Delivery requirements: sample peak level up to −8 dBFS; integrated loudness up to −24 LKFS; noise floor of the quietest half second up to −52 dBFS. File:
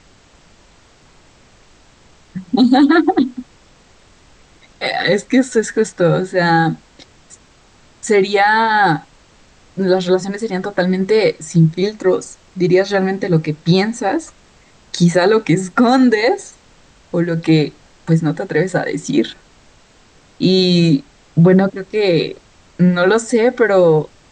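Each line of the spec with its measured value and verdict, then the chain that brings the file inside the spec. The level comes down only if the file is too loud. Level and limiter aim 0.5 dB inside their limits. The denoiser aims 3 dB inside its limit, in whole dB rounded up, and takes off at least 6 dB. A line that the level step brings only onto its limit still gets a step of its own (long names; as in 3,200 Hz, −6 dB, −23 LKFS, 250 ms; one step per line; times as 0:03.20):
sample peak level −3.5 dBFS: out of spec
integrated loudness −15.0 LKFS: out of spec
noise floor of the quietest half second −49 dBFS: out of spec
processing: level −9.5 dB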